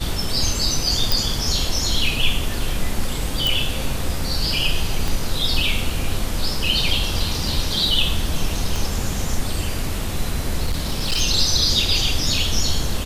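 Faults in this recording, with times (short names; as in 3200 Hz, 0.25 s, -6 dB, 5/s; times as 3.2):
1.12 pop
3.47 pop
5.08 pop
8.76 pop
10.66–11.22 clipped -16.5 dBFS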